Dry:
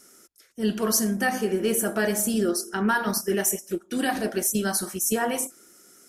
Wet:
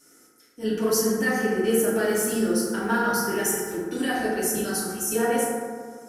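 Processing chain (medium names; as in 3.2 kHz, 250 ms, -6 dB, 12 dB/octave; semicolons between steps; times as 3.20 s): 2.04–3.86 s: companding laws mixed up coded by mu; FDN reverb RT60 1.9 s, low-frequency decay 1.1×, high-frequency decay 0.35×, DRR -7 dB; trim -7 dB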